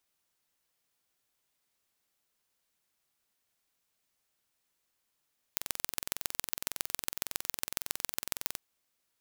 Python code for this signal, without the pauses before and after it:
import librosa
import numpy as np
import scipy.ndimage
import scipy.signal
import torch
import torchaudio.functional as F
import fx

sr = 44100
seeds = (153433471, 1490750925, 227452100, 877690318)

y = fx.impulse_train(sr, length_s=3.02, per_s=21.8, accent_every=3, level_db=-2.5)